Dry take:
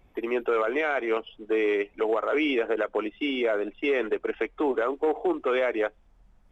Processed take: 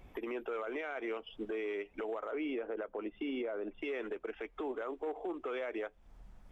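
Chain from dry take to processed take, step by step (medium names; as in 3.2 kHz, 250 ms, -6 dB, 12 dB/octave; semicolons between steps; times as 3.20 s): 2.31–3.82 s: low-pass 1.2 kHz 6 dB/octave; compression 10:1, threshold -37 dBFS, peak gain reduction 16 dB; peak limiter -34 dBFS, peak gain reduction 7 dB; trim +3.5 dB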